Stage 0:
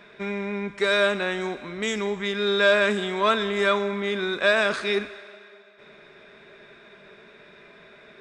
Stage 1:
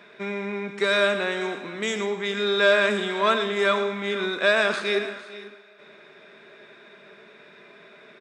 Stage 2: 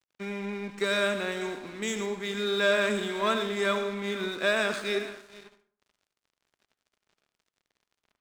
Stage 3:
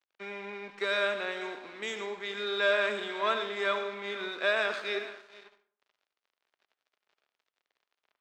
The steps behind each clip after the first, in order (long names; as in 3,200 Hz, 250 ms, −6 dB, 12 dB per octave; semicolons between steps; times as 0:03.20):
high-pass filter 170 Hz 12 dB per octave; on a send: multi-tap delay 111/454/493 ms −11/−18/−20 dB
octave-band graphic EQ 125/250/8,000 Hz +4/+5/+8 dB; dead-zone distortion −40.5 dBFS; on a send at −13 dB: convolution reverb RT60 0.50 s, pre-delay 62 ms; on the sum: level −6 dB
three-way crossover with the lows and the highs turned down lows −17 dB, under 380 Hz, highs −18 dB, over 5,100 Hz; level −1 dB